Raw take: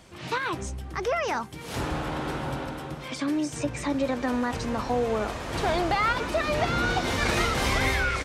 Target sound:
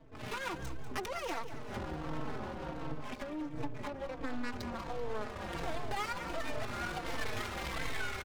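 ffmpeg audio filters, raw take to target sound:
-filter_complex "[0:a]asettb=1/sr,asplit=3[a][b][c];[a]atrim=end=1.534[d];[b]atrim=start=1.53:end=4.26,asetpts=PTS-STARTPTS,afade=t=in:d=0.004:c=qsin,afade=t=out:st=2.726:d=0.004:c=qsin,lowpass=f=2k:p=1[e];[c]atrim=start=4.256[f];[d][e]acrossfade=d=0.004:c1=hsin:c2=qsin[g];[g][f]acrossfade=d=0.004:c1=qsin:c2=hsin,acompressor=threshold=-33dB:ratio=6,crystalizer=i=3:c=0,adynamicsmooth=sensitivity=6.5:basefreq=520,aeval=exprs='max(val(0),0)':c=same,aecho=1:1:193|386|579|772|965:0.251|0.113|0.0509|0.0229|0.0103,asplit=2[h][i];[i]adelay=4,afreqshift=-1.4[j];[h][j]amix=inputs=2:normalize=1,volume=3.5dB"

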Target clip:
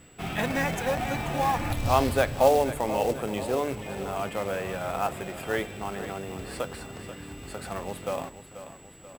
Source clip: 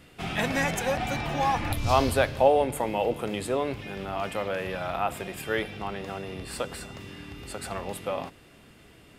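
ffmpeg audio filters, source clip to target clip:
-af "aeval=exprs='val(0)+0.00282*sin(2*PI*7800*n/s)':c=same,highshelf=f=3.3k:g=-7,acrusher=bits=4:mode=log:mix=0:aa=0.000001,aecho=1:1:485|970|1455|1940|2425:0.237|0.123|0.0641|0.0333|0.0173"

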